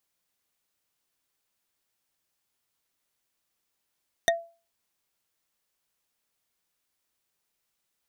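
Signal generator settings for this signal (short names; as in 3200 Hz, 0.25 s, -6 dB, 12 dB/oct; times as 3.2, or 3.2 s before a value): wood hit bar, lowest mode 674 Hz, decay 0.34 s, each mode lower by 1 dB, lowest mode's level -17 dB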